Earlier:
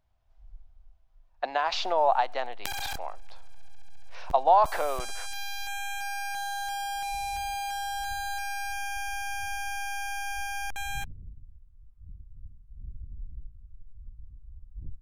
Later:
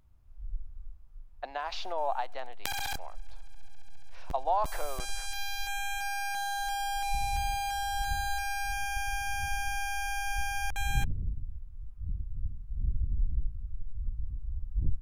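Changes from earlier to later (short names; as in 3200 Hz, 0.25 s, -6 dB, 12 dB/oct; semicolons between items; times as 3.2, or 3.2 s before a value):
speech -8.5 dB; first sound +11.0 dB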